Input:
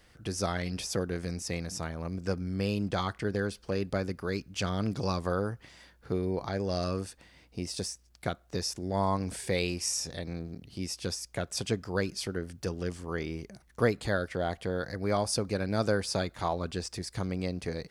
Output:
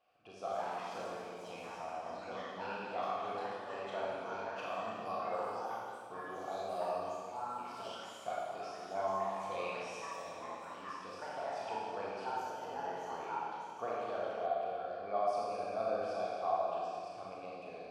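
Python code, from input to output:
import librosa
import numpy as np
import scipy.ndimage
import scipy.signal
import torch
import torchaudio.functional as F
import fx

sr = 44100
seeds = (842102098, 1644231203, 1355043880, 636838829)

y = fx.vowel_filter(x, sr, vowel='a')
y = fx.rev_schroeder(y, sr, rt60_s=2.3, comb_ms=28, drr_db=-6.0)
y = fx.echo_pitch(y, sr, ms=246, semitones=4, count=3, db_per_echo=-6.0)
y = y * librosa.db_to_amplitude(-2.0)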